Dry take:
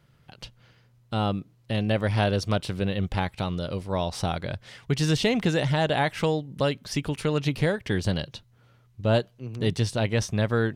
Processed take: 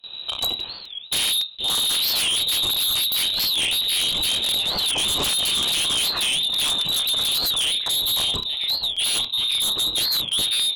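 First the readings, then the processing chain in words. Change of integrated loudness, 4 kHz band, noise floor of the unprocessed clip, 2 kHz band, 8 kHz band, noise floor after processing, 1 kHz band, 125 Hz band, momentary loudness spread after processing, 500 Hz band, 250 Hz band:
+7.0 dB, +18.5 dB, -60 dBFS, +2.0 dB, +17.0 dB, -36 dBFS, -4.0 dB, -17.0 dB, 3 LU, -12.5 dB, -13.5 dB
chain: low shelf 100 Hz +9.5 dB; fixed phaser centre 490 Hz, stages 6; on a send: flutter echo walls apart 5.3 m, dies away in 0.21 s; on the sum: compressor 2.5:1, threshold -45 dBFS, peak gain reduction 16 dB; echoes that change speed 0.128 s, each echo +2 st, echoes 3, each echo -6 dB; inverted band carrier 3900 Hz; sine folder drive 15 dB, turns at -24.5 dBFS; gate with hold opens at -35 dBFS; crackling interface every 0.27 s, samples 128, repeat, from 0.6; record warp 45 rpm, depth 250 cents; gain +6 dB

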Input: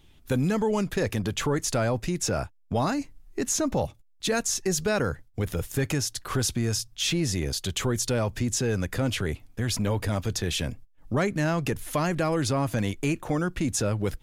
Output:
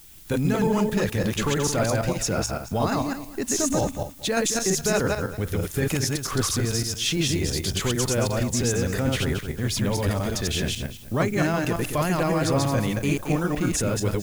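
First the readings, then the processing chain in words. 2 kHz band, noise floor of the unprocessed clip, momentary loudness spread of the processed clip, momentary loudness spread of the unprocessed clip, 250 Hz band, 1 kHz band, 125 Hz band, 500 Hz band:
+3.0 dB, -58 dBFS, 5 LU, 6 LU, +3.0 dB, +3.0 dB, +3.0 dB, +3.0 dB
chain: regenerating reverse delay 0.112 s, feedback 41%, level -0.5 dB; added noise blue -49 dBFS

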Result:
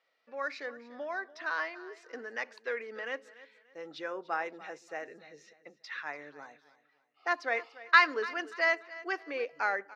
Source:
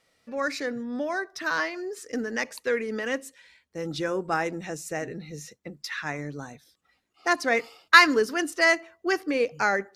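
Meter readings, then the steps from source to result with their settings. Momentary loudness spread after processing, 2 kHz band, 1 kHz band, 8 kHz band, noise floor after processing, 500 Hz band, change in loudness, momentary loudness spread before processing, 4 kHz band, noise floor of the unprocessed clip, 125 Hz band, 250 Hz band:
18 LU, -6.5 dB, -6.0 dB, -19.5 dB, -72 dBFS, -9.5 dB, -7.0 dB, 16 LU, -10.5 dB, -72 dBFS, -26.5 dB, -16.5 dB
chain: HPF 580 Hz 12 dB/oct; air absorption 210 m; on a send: feedback echo 0.291 s, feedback 32%, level -18 dB; on the sum: gain -4.5 dB

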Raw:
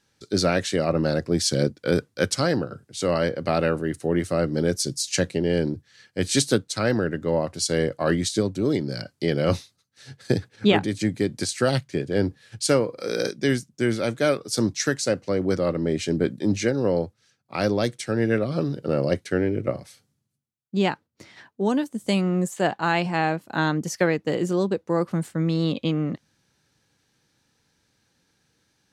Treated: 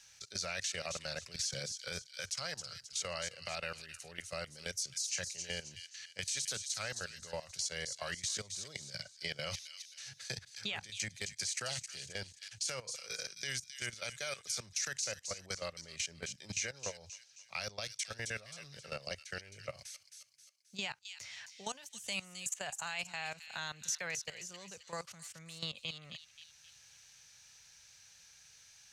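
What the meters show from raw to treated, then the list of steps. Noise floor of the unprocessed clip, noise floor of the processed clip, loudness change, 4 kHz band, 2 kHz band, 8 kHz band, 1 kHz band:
-72 dBFS, -62 dBFS, -15.5 dB, -8.0 dB, -11.0 dB, -5.5 dB, -18.0 dB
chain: passive tone stack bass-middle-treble 10-0-10; level quantiser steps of 19 dB; limiter -30 dBFS, peak gain reduction 11 dB; fifteen-band EQ 630 Hz +4 dB, 2500 Hz +6 dB, 6300 Hz +10 dB; thin delay 0.265 s, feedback 32%, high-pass 3100 Hz, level -7 dB; three-band squash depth 40%; gain -1 dB

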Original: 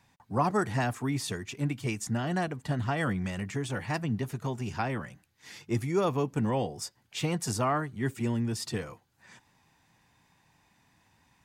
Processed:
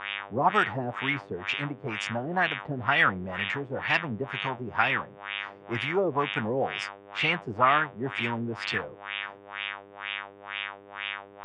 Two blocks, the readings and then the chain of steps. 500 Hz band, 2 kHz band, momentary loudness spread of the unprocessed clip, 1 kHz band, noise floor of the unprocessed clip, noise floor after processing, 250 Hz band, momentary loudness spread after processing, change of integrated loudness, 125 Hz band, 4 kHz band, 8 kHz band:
+2.0 dB, +11.5 dB, 8 LU, +6.0 dB, -69 dBFS, -50 dBFS, -3.0 dB, 12 LU, +2.5 dB, -5.5 dB, +8.5 dB, under -10 dB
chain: buzz 100 Hz, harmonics 37, -45 dBFS 0 dB/oct; LFO low-pass sine 2.1 Hz 390–2800 Hz; tilt shelf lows -8 dB, about 670 Hz; gain +1.5 dB

